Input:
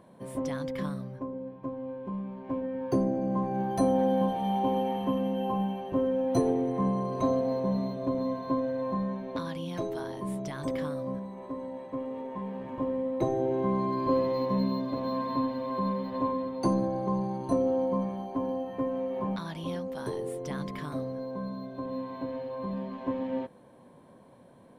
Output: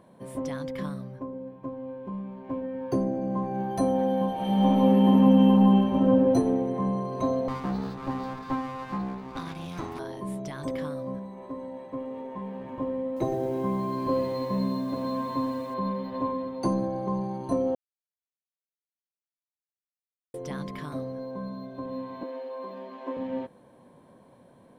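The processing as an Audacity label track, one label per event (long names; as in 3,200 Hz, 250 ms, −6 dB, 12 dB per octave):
4.330000	6.050000	thrown reverb, RT60 2.3 s, DRR −6.5 dB
7.480000	9.990000	lower of the sound and its delayed copy delay 0.81 ms
13.050000	15.740000	feedback echo at a low word length 114 ms, feedback 55%, word length 8 bits, level −11 dB
17.750000	20.340000	silence
22.230000	23.170000	high-pass filter 300 Hz 24 dB per octave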